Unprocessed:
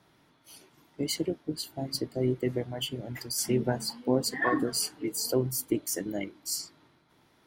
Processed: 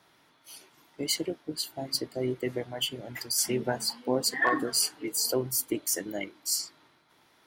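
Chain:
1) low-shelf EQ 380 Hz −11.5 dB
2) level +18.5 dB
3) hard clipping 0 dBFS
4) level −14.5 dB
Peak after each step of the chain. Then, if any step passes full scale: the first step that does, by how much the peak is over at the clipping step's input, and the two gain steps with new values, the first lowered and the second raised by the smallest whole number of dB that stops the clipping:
−15.0, +3.5, 0.0, −14.5 dBFS
step 2, 3.5 dB
step 2 +14.5 dB, step 4 −10.5 dB

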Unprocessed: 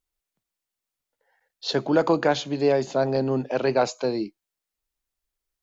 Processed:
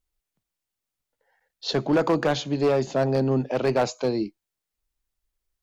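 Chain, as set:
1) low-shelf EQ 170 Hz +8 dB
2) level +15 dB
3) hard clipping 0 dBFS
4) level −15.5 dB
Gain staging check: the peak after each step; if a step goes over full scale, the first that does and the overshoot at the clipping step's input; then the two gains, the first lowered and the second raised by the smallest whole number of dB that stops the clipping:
−7.0, +8.0, 0.0, −15.5 dBFS
step 2, 8.0 dB
step 2 +7 dB, step 4 −7.5 dB

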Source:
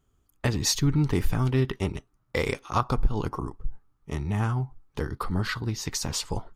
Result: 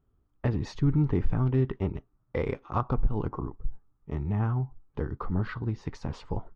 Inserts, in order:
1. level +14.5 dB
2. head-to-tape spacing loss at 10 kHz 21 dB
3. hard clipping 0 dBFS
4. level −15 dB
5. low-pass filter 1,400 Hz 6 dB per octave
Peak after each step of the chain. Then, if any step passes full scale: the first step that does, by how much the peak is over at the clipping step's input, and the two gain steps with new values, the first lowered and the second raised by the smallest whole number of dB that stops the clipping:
+4.0, +3.5, 0.0, −15.0, −15.0 dBFS
step 1, 3.5 dB
step 1 +10.5 dB, step 4 −11 dB

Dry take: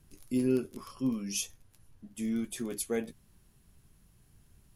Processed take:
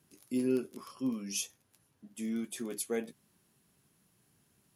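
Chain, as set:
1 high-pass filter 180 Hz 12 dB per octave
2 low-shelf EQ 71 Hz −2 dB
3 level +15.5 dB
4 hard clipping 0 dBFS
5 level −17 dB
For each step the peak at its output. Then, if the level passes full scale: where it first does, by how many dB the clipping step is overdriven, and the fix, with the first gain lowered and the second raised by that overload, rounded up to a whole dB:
−18.5, −18.5, −3.0, −3.0, −20.0 dBFS
no step passes full scale

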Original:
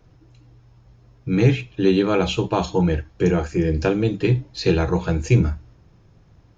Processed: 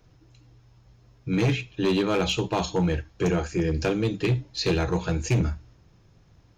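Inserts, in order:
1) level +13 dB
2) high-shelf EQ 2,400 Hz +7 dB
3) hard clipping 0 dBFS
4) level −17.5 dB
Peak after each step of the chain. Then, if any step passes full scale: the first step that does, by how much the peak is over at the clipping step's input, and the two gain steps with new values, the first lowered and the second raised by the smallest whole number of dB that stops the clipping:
+9.0, +9.5, 0.0, −17.5 dBFS
step 1, 9.5 dB
step 1 +3 dB, step 4 −7.5 dB

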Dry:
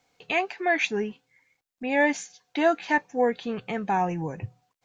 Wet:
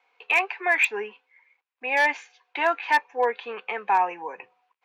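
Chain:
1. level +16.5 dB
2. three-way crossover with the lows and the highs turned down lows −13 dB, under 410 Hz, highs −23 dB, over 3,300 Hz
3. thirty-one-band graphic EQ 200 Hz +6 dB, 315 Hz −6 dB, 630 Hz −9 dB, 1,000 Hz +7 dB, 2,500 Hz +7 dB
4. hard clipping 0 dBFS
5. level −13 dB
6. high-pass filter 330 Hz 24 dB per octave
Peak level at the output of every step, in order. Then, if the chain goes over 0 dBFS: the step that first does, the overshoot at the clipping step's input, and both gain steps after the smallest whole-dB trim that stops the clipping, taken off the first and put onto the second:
+7.0, +5.5, +7.5, 0.0, −13.0, −8.5 dBFS
step 1, 7.5 dB
step 1 +8.5 dB, step 5 −5 dB

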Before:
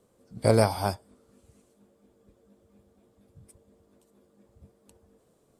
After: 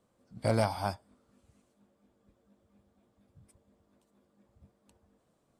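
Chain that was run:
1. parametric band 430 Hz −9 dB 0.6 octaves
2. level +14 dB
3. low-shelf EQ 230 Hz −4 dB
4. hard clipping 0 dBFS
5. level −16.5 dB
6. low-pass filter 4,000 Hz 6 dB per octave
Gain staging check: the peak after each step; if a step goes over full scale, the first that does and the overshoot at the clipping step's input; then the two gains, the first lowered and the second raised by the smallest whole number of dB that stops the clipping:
−8.0, +6.0, +5.0, 0.0, −16.5, −16.5 dBFS
step 2, 5.0 dB
step 2 +9 dB, step 5 −11.5 dB

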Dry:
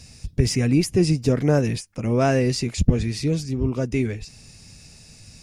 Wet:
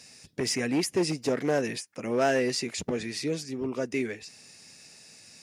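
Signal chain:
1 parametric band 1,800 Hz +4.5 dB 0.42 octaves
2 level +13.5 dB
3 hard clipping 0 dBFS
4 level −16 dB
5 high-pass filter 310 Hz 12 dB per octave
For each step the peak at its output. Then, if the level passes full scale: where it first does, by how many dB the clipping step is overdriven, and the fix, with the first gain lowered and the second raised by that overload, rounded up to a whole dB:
−4.0, +9.5, 0.0, −16.0, −12.0 dBFS
step 2, 9.5 dB
step 2 +3.5 dB, step 4 −6 dB

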